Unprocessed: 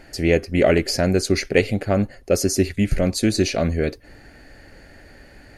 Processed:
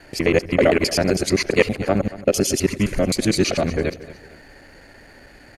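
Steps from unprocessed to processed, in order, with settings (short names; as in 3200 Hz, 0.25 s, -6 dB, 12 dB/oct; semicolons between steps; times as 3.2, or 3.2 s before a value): local time reversal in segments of 65 ms; low shelf 190 Hz -6.5 dB; added harmonics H 8 -44 dB, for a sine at -3 dBFS; harmoniser -12 st -13 dB; on a send: feedback echo 0.229 s, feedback 36%, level -17 dB; on the sum: gain +2 dB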